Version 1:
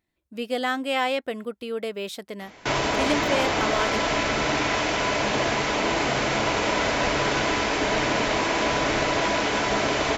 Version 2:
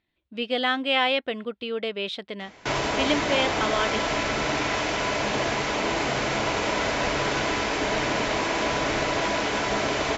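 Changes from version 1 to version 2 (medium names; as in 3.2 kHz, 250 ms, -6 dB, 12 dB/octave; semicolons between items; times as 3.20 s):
speech: add resonant low-pass 3.4 kHz, resonance Q 2.2; reverb: off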